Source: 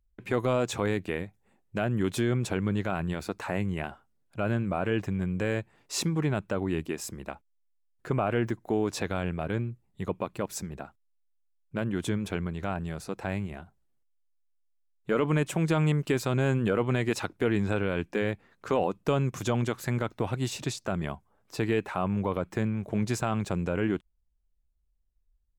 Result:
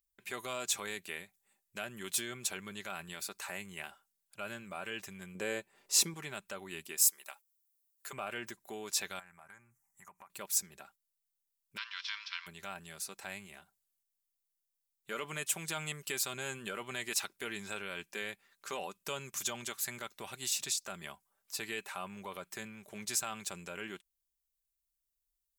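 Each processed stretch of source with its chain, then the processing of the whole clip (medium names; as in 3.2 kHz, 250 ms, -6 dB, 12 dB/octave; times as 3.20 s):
5.35–6.14 s: peaking EQ 390 Hz +9.5 dB 2.3 oct + upward compressor, threshold -45 dBFS + tape noise reduction on one side only decoder only
6.97–8.13 s: high-pass 580 Hz + treble shelf 7 kHz +10 dB
9.19–10.30 s: FFT filter 150 Hz 0 dB, 480 Hz -9 dB, 830 Hz +10 dB, 2.1 kHz +5 dB, 3.7 kHz -23 dB, 5.9 kHz +7 dB, 11 kHz +3 dB + compression 4:1, threshold -42 dBFS
11.76–12.46 s: formants flattened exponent 0.6 + Chebyshev band-pass 970–5400 Hz, order 5
whole clip: pre-emphasis filter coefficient 0.97; comb 5.1 ms, depth 39%; trim +6 dB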